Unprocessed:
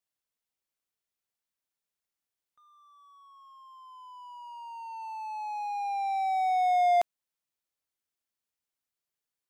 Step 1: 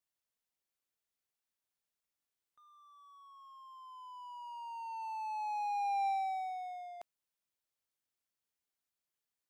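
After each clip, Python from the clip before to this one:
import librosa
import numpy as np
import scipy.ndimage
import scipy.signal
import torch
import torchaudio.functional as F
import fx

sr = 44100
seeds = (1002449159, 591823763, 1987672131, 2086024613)

y = fx.over_compress(x, sr, threshold_db=-30.0, ratio=-0.5)
y = F.gain(torch.from_numpy(y), -5.5).numpy()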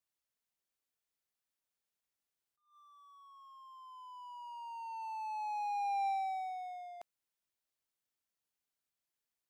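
y = fx.attack_slew(x, sr, db_per_s=140.0)
y = F.gain(torch.from_numpy(y), -1.0).numpy()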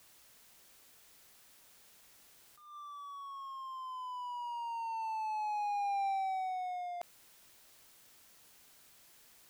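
y = fx.env_flatten(x, sr, amount_pct=50)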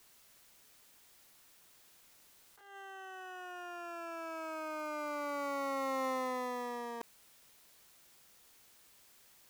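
y = fx.cycle_switch(x, sr, every=3, mode='inverted')
y = F.gain(torch.from_numpy(y), -1.5).numpy()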